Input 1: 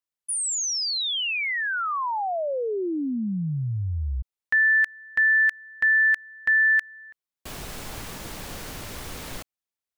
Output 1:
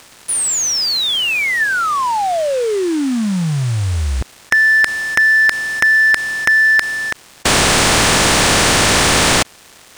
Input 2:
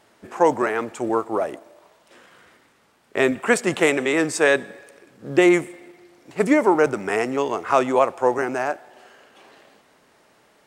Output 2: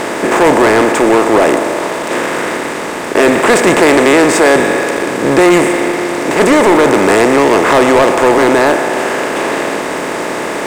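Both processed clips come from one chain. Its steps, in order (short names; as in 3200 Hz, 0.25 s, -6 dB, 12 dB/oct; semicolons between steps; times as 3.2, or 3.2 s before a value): per-bin compression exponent 0.4; sample leveller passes 3; gain -3 dB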